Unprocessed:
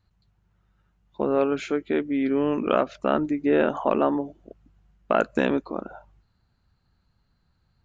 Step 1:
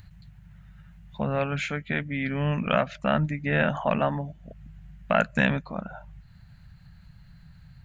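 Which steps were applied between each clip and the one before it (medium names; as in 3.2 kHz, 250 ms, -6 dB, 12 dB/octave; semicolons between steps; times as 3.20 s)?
FFT filter 100 Hz 0 dB, 160 Hz +7 dB, 350 Hz -25 dB, 610 Hz -8 dB, 1.2 kHz -10 dB, 1.8 kHz +1 dB, 5.5 kHz -8 dB, 9.2 kHz -3 dB; in parallel at -3 dB: upward compressor, threshold -36 dBFS; on the sum: trim +2.5 dB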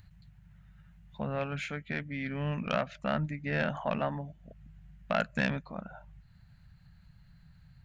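self-modulated delay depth 0.051 ms; trim -7 dB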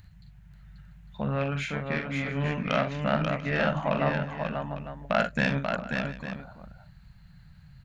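multi-tap echo 43/58/65/537/691/852 ms -7/-17/-18/-4.5/-18.5/-12.5 dB; trim +3.5 dB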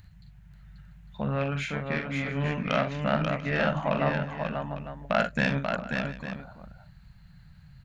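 no audible change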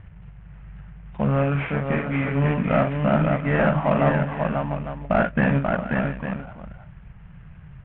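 CVSD coder 16 kbps; hard clipper -17.5 dBFS, distortion -28 dB; distance through air 420 m; trim +9 dB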